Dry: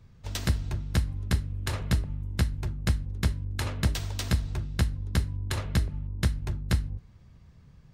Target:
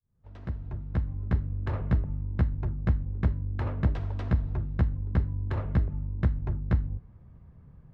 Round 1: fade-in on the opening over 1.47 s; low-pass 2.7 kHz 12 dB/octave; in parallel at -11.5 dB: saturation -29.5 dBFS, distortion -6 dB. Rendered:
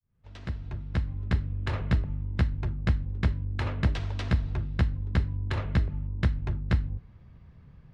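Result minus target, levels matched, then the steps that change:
2 kHz band +6.5 dB
change: low-pass 1.2 kHz 12 dB/octave

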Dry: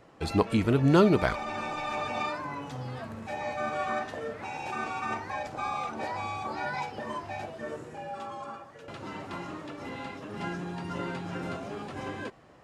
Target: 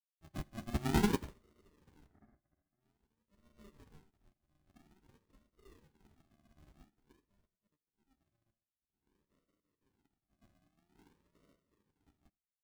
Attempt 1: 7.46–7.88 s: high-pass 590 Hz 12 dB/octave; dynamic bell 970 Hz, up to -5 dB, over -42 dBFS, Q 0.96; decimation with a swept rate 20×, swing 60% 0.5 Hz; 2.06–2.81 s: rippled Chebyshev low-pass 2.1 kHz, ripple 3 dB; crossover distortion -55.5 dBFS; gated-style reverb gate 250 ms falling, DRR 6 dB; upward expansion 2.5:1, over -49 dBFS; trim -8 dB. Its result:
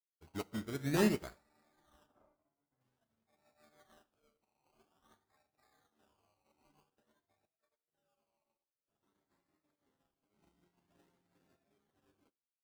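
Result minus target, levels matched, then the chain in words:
decimation with a swept rate: distortion -22 dB; 1 kHz band -4.0 dB
7.46–7.88 s: high-pass 590 Hz 12 dB/octave; decimation with a swept rate 75×, swing 60% 0.5 Hz; 2.06–2.81 s: rippled Chebyshev low-pass 2.1 kHz, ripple 3 dB; crossover distortion -55.5 dBFS; gated-style reverb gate 250 ms falling, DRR 6 dB; upward expansion 2.5:1, over -49 dBFS; trim -8 dB

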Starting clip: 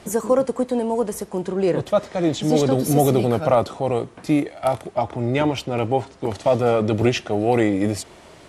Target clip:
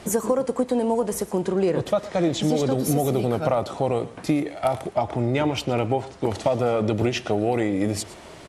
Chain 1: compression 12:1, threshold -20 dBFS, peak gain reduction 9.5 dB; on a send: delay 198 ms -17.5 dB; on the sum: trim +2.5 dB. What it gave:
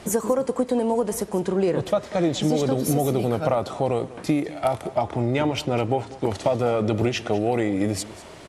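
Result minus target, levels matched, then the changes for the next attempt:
echo 83 ms late
change: delay 115 ms -17.5 dB

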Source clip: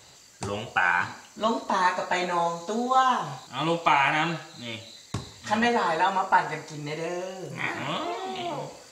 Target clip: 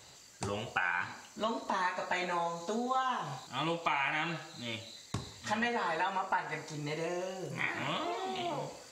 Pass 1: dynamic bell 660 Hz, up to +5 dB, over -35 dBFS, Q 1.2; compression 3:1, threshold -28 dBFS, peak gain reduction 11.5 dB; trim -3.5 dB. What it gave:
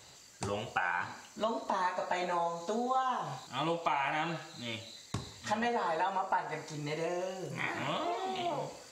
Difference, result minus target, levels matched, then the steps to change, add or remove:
2 kHz band -3.0 dB
change: dynamic bell 2.2 kHz, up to +5 dB, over -35 dBFS, Q 1.2

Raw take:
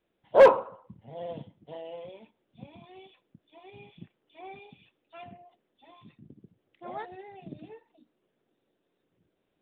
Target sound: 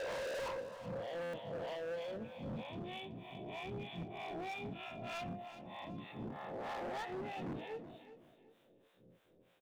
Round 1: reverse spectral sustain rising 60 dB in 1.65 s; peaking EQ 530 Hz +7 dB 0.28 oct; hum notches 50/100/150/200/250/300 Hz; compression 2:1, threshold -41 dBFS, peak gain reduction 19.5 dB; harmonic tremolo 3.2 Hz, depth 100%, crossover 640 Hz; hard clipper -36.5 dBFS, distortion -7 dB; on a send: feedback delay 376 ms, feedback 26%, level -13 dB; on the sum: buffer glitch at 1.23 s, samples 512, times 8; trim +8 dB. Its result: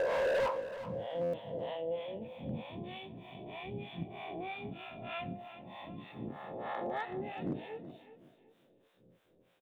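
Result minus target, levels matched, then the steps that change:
hard clipper: distortion -6 dB
change: hard clipper -47.5 dBFS, distortion 0 dB

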